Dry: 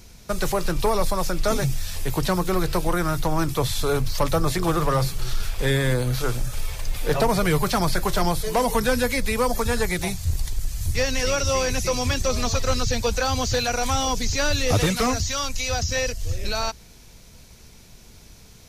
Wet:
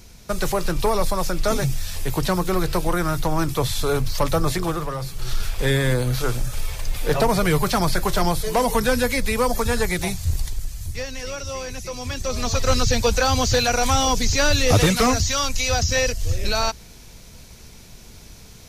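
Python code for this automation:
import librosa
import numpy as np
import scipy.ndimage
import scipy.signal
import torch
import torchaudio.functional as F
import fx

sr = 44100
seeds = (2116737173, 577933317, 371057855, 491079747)

y = fx.gain(x, sr, db=fx.line((4.54, 1.0), (4.98, -8.0), (5.32, 1.5), (10.38, 1.5), (11.09, -8.0), (11.94, -8.0), (12.73, 4.0)))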